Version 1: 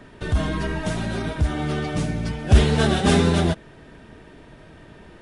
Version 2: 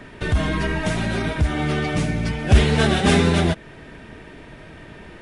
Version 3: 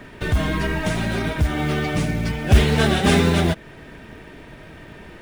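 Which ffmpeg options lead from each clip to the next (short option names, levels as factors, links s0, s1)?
-filter_complex "[0:a]equalizer=f=2200:t=o:w=0.73:g=5.5,asplit=2[s0][s1];[s1]acompressor=threshold=0.0562:ratio=6,volume=0.794[s2];[s0][s2]amix=inputs=2:normalize=0,volume=0.891"
-af "acrusher=bits=7:mode=log:mix=0:aa=0.000001"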